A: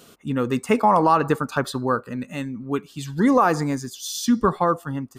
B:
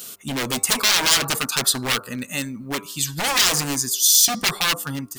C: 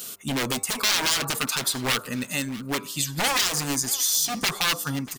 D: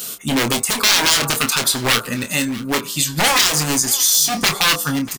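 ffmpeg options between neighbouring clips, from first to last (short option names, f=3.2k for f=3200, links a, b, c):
-af "aeval=exprs='0.0891*(abs(mod(val(0)/0.0891+3,4)-2)-1)':c=same,bandreject=f=98.82:t=h:w=4,bandreject=f=197.64:t=h:w=4,bandreject=f=296.46:t=h:w=4,bandreject=f=395.28:t=h:w=4,bandreject=f=494.1:t=h:w=4,bandreject=f=592.92:t=h:w=4,bandreject=f=691.74:t=h:w=4,bandreject=f=790.56:t=h:w=4,bandreject=f=889.38:t=h:w=4,bandreject=f=988.2:t=h:w=4,bandreject=f=1.08702k:t=h:w=4,bandreject=f=1.18584k:t=h:w=4,bandreject=f=1.28466k:t=h:w=4,bandreject=f=1.38348k:t=h:w=4,crystalizer=i=7.5:c=0,volume=-1dB"
-af "alimiter=limit=-12.5dB:level=0:latency=1:release=176,aecho=1:1:639|1278:0.112|0.0281"
-filter_complex "[0:a]asplit=2[a][b];[b]adelay=26,volume=-7.5dB[c];[a][c]amix=inputs=2:normalize=0,volume=7.5dB"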